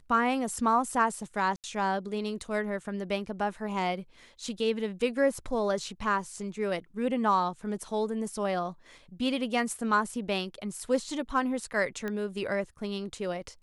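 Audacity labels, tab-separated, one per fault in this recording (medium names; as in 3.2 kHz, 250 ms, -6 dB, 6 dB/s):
1.560000	1.640000	dropout 78 ms
12.080000	12.080000	pop -21 dBFS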